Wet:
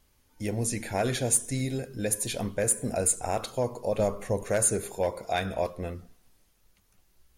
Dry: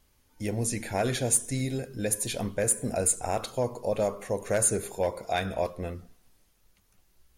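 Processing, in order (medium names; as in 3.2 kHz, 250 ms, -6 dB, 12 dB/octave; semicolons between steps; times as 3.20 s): 3.99–4.44 s: bass shelf 140 Hz +10.5 dB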